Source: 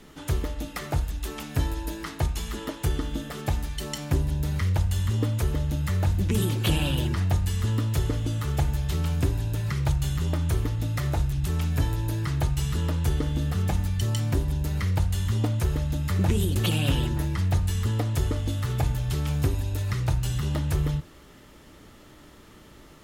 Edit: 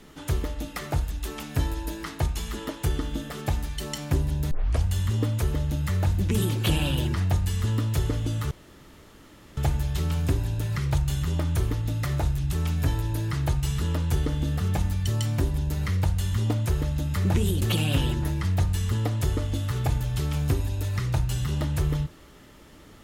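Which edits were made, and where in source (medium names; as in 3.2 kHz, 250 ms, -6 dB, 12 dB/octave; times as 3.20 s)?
4.51 s: tape start 0.33 s
8.51 s: insert room tone 1.06 s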